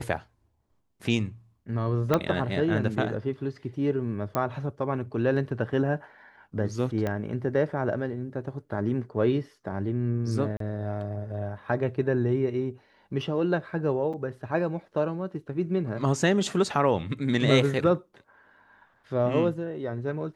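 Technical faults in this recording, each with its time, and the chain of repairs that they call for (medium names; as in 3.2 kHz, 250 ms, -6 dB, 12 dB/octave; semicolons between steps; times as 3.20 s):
2.14 s: pop -10 dBFS
4.35 s: pop -14 dBFS
7.07 s: pop -17 dBFS
10.57–10.60 s: dropout 33 ms
14.13–14.14 s: dropout 6.2 ms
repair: de-click; interpolate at 10.57 s, 33 ms; interpolate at 14.13 s, 6.2 ms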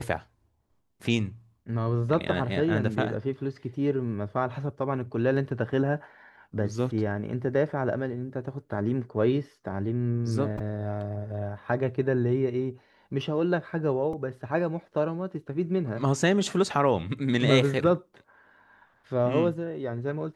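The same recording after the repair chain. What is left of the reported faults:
2.14 s: pop
4.35 s: pop
7.07 s: pop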